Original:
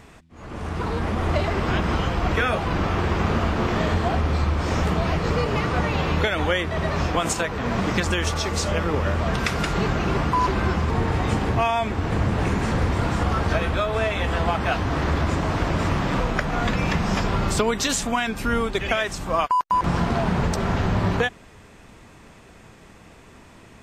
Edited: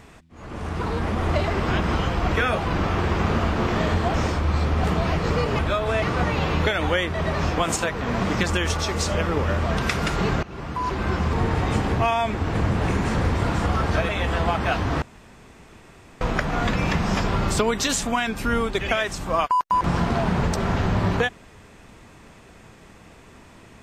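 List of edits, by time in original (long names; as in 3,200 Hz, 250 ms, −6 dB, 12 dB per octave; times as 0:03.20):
0:04.14–0:04.84: reverse
0:10.00–0:10.84: fade in, from −20.5 dB
0:13.66–0:14.09: move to 0:05.59
0:15.02–0:16.21: fill with room tone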